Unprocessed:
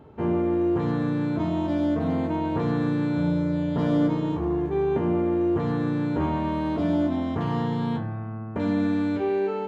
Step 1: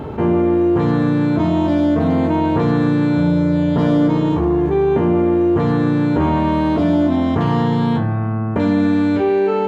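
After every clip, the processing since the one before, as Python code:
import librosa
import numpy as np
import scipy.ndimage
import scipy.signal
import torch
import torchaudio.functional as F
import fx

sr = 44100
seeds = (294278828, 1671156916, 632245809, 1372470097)

y = fx.env_flatten(x, sr, amount_pct=50)
y = F.gain(torch.from_numpy(y), 6.5).numpy()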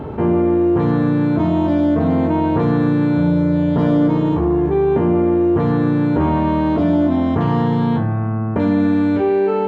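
y = fx.high_shelf(x, sr, hz=3000.0, db=-8.5)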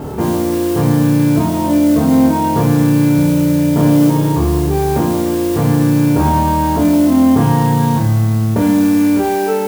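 y = fx.mod_noise(x, sr, seeds[0], snr_db=20)
y = fx.room_flutter(y, sr, wall_m=4.6, rt60_s=0.35)
y = F.gain(torch.from_numpy(y), 1.5).numpy()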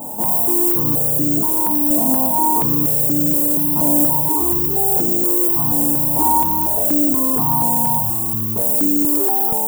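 y = scipy.signal.sosfilt(scipy.signal.ellip(3, 1.0, 80, [1000.0, 7700.0], 'bandstop', fs=sr, output='sos'), x)
y = fx.riaa(y, sr, side='recording')
y = fx.phaser_held(y, sr, hz=4.2, low_hz=400.0, high_hz=3500.0)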